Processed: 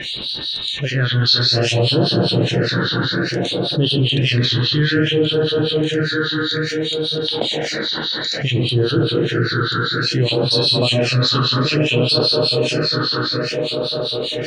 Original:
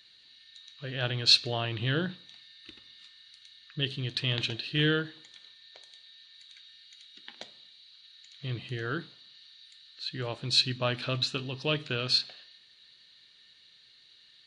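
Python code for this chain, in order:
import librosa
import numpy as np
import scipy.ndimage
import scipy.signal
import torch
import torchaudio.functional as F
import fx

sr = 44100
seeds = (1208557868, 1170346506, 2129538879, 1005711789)

p1 = fx.peak_eq(x, sr, hz=440.0, db=6.0, octaves=2.2)
p2 = p1 + fx.echo_wet_bandpass(p1, sr, ms=231, feedback_pct=67, hz=830.0, wet_db=-5, dry=0)
p3 = fx.rev_plate(p2, sr, seeds[0], rt60_s=4.4, hf_ratio=0.65, predelay_ms=0, drr_db=-1.5)
p4 = fx.harmonic_tremolo(p3, sr, hz=5.0, depth_pct=100, crossover_hz=2300.0)
p5 = fx.rider(p4, sr, range_db=4, speed_s=0.5)
p6 = p4 + (p5 * librosa.db_to_amplitude(2.5))
p7 = fx.phaser_stages(p6, sr, stages=6, low_hz=630.0, high_hz=2100.0, hz=0.59, feedback_pct=20)
y = fx.env_flatten(p7, sr, amount_pct=70)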